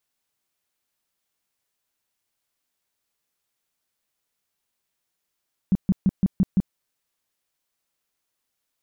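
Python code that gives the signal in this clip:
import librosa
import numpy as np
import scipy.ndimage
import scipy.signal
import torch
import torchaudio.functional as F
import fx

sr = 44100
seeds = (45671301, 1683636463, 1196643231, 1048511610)

y = fx.tone_burst(sr, hz=190.0, cycles=6, every_s=0.17, bursts=6, level_db=-14.0)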